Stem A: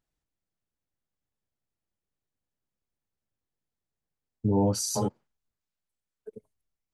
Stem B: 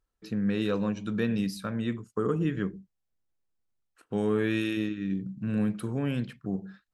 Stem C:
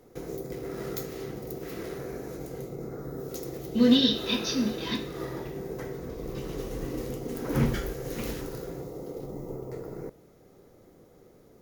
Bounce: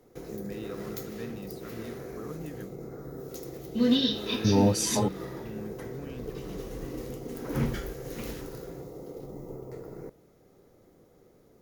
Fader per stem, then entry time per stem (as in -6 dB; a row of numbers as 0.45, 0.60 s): +1.5, -13.0, -3.5 dB; 0.00, 0.00, 0.00 s